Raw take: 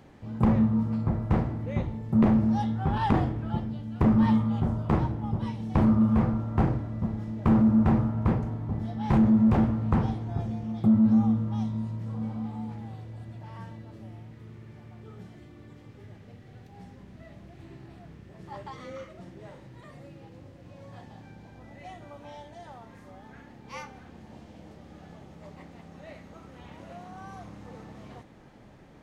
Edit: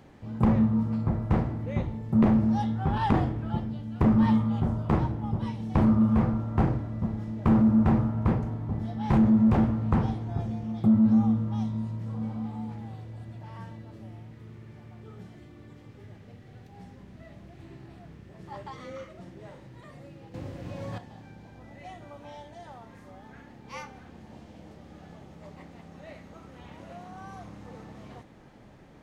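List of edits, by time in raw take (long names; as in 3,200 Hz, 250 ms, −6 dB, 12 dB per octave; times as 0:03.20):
0:20.34–0:20.98: clip gain +10 dB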